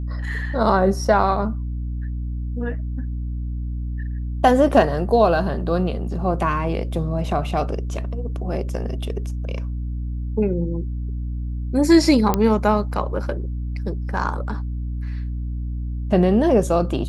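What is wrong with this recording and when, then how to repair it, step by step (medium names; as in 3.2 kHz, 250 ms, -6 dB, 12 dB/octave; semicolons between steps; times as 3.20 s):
hum 60 Hz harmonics 5 -26 dBFS
12.34 s: pop -5 dBFS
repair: de-click; de-hum 60 Hz, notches 5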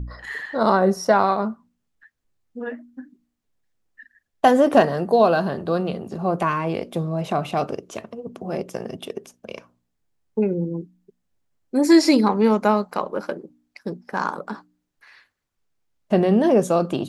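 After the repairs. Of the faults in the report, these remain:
nothing left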